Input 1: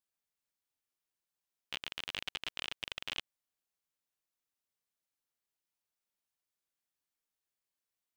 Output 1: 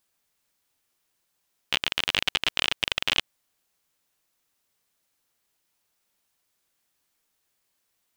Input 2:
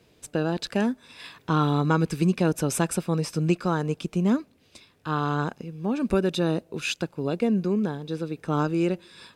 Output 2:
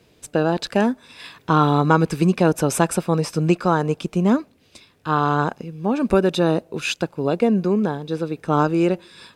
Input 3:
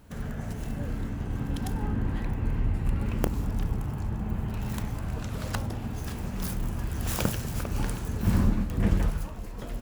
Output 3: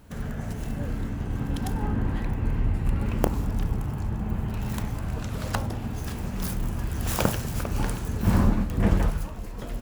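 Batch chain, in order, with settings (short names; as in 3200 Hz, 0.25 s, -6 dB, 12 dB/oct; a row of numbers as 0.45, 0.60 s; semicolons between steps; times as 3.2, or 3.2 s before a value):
dynamic EQ 800 Hz, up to +6 dB, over -38 dBFS, Q 0.73; normalise peaks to -3 dBFS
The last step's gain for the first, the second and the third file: +15.0, +3.5, +2.0 dB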